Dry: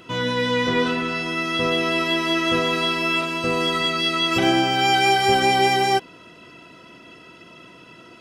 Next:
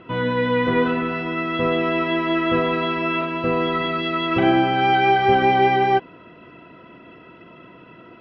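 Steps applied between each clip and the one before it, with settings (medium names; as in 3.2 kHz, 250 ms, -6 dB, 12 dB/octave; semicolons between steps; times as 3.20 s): Bessel low-pass 1.9 kHz, order 4; trim +2.5 dB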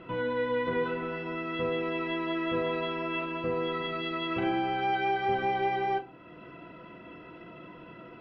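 compression 1.5:1, threshold -40 dBFS, peak gain reduction 10 dB; simulated room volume 120 m³, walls furnished, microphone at 0.74 m; trim -4 dB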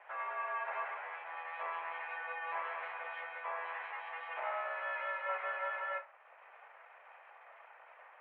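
full-wave rectifier; mistuned SSB +170 Hz 390–2200 Hz; flange 0.47 Hz, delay 6.9 ms, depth 5.6 ms, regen -82%; trim +1 dB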